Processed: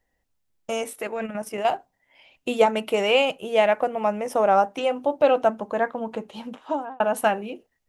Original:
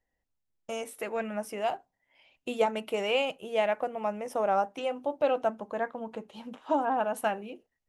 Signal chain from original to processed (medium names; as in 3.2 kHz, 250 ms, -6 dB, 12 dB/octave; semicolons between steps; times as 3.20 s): 0.93–1.65 s: level held to a coarse grid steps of 9 dB; 6.38–7.00 s: fade out; trim +8 dB